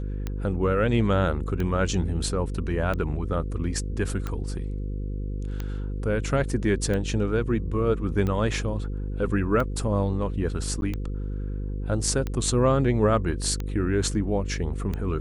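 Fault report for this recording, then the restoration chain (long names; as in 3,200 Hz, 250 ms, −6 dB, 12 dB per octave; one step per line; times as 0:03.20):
mains buzz 50 Hz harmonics 10 −30 dBFS
scratch tick 45 rpm −17 dBFS
0:10.81–0:10.82: drop-out 11 ms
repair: click removal
hum removal 50 Hz, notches 10
repair the gap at 0:10.81, 11 ms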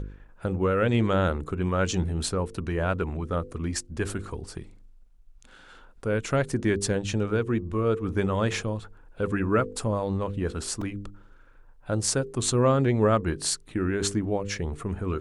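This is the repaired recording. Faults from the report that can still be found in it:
none of them is left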